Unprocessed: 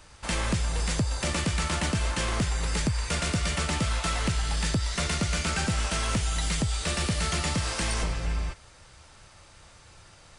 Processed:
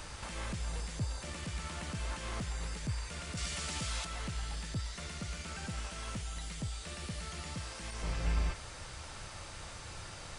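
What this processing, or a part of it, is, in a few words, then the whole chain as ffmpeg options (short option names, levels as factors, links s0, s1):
de-esser from a sidechain: -filter_complex "[0:a]asplit=2[s0][s1];[s1]highpass=4500,apad=whole_len=458125[s2];[s0][s2]sidechaincompress=threshold=0.00141:ratio=8:attack=0.77:release=31,asettb=1/sr,asplit=3[s3][s4][s5];[s3]atrim=end=3.374[s6];[s4]atrim=start=3.37:end=4.05,asetpts=PTS-STARTPTS,afade=t=in:d=0.004:c=qsin,afade=t=out:st=0.676:d=0.004:c=qsin,equalizer=f=6500:t=o:w=2.6:g=8.5[s7];[s5]atrim=start=4.046[s8];[s6][s7]acrossfade=d=0.004:c1=hsin:c2=qsin[s9];[s9][s8]acrossfade=d=0.004:c1=qsin:c2=hsin,volume=2.66"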